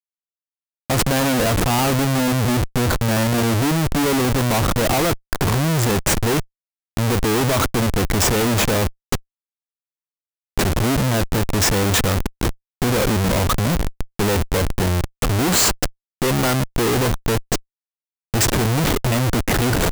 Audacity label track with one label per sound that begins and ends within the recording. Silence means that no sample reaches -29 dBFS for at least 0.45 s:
0.900000	6.420000	sound
6.970000	9.170000	sound
10.580000	17.580000	sound